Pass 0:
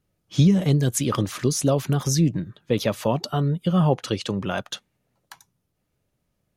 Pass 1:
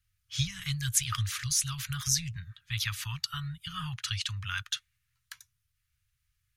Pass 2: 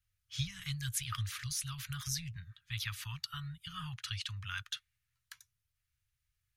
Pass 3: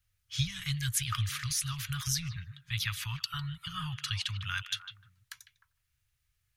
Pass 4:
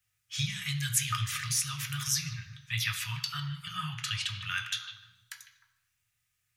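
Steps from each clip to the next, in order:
inverse Chebyshev band-stop filter 240–630 Hz, stop band 60 dB
dynamic equaliser 6,900 Hz, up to −7 dB, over −43 dBFS, Q 1.6; level −6 dB
echo through a band-pass that steps 152 ms, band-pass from 2,700 Hz, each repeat −1.4 octaves, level −9.5 dB; level +5.5 dB
convolution reverb RT60 0.95 s, pre-delay 3 ms, DRR 3.5 dB; level +2 dB

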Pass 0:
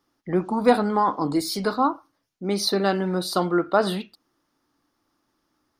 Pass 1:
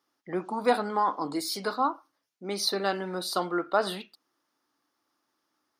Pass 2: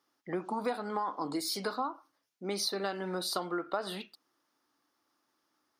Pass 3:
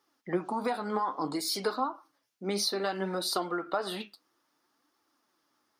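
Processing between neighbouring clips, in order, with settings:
high-pass filter 520 Hz 6 dB per octave; level −3 dB
downward compressor 6 to 1, threshold −30 dBFS, peak gain reduction 12.5 dB
flanger 0.6 Hz, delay 2.1 ms, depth 8.5 ms, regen +54%; level +7 dB

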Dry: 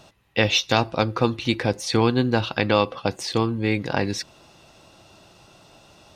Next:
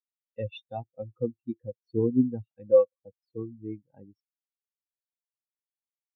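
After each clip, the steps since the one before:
every bin expanded away from the loudest bin 4 to 1
level −5 dB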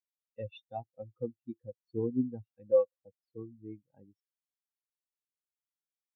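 dynamic equaliser 750 Hz, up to +6 dB, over −42 dBFS, Q 1.9
level −8 dB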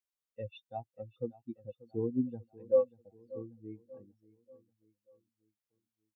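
repeating echo 587 ms, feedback 47%, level −19.5 dB
level −1 dB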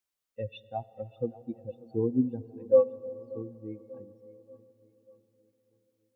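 comb and all-pass reverb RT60 4.8 s, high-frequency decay 0.35×, pre-delay 15 ms, DRR 18 dB
level +5.5 dB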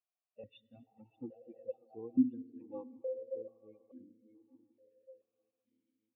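spectral magnitudes quantised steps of 30 dB
formant filter that steps through the vowels 2.3 Hz
level +2 dB

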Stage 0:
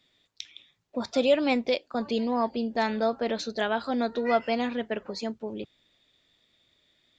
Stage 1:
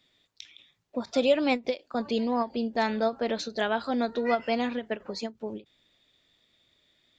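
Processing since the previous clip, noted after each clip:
every ending faded ahead of time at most 310 dB per second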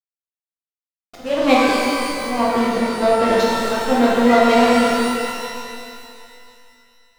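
volume swells 344 ms
slack as between gear wheels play −31 dBFS
reverb with rising layers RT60 2.5 s, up +12 semitones, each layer −8 dB, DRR −6.5 dB
level +7.5 dB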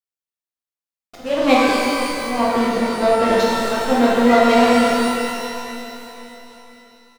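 repeating echo 502 ms, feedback 52%, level −18.5 dB

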